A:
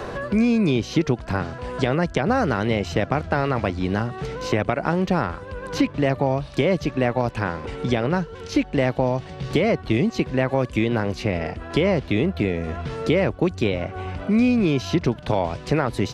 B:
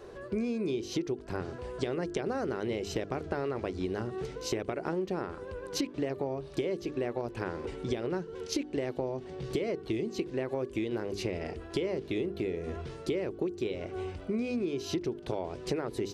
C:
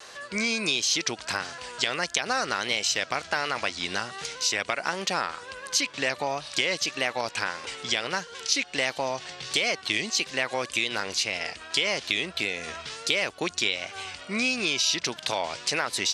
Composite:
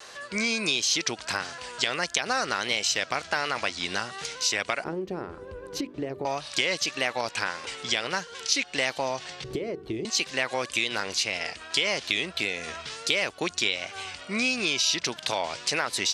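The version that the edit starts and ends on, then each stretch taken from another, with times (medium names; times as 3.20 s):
C
4.84–6.25 s: from B
9.44–10.05 s: from B
not used: A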